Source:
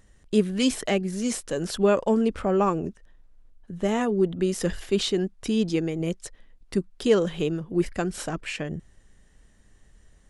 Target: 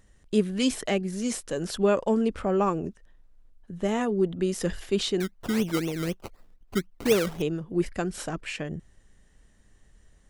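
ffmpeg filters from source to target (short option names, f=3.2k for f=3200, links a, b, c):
-filter_complex "[0:a]asettb=1/sr,asplit=3[a][b][c];[a]atrim=end=5.204[d];[b]atrim=start=5.2:end=7.42,asetpts=PTS-STARTPTS,afade=t=in:d=0.004:c=qsin,afade=t=out:st=2.216:d=0.004:c=qsin,acrusher=samples=20:mix=1:aa=0.000001:lfo=1:lforange=12:lforate=4[e];[c]atrim=start=7.416[f];[d][e]acrossfade=d=0.004:c1=hsin:c2=qsin[g];[g][f]acrossfade=d=0.004:c1=qsin:c2=hsin,volume=-2dB"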